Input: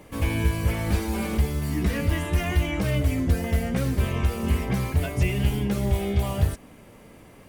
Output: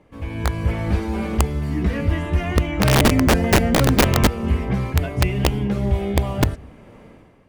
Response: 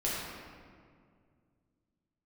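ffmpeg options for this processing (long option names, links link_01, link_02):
-filter_complex "[0:a]asplit=2[link_01][link_02];[1:a]atrim=start_sample=2205,atrim=end_sample=4410,adelay=135[link_03];[link_02][link_03]afir=irnorm=-1:irlink=0,volume=-28.5dB[link_04];[link_01][link_04]amix=inputs=2:normalize=0,asplit=3[link_05][link_06][link_07];[link_05]afade=type=out:start_time=2.8:duration=0.02[link_08];[link_06]acontrast=38,afade=type=in:start_time=2.8:duration=0.02,afade=type=out:start_time=4.26:duration=0.02[link_09];[link_07]afade=type=in:start_time=4.26:duration=0.02[link_10];[link_08][link_09][link_10]amix=inputs=3:normalize=0,aemphasis=mode=reproduction:type=75fm,aeval=exprs='(mod(3.55*val(0)+1,2)-1)/3.55':channel_layout=same,dynaudnorm=framelen=100:gausssize=9:maxgain=14dB,volume=-7dB"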